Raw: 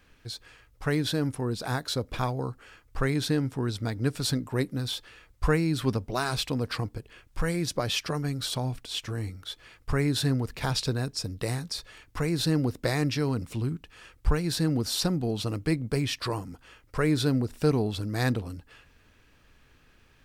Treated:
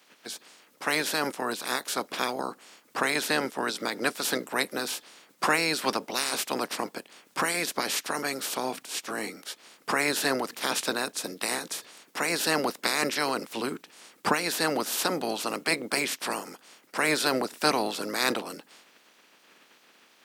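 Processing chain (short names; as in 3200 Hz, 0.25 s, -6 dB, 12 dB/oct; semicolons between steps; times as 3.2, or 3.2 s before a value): spectral limiter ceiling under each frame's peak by 24 dB; HPF 200 Hz 24 dB/oct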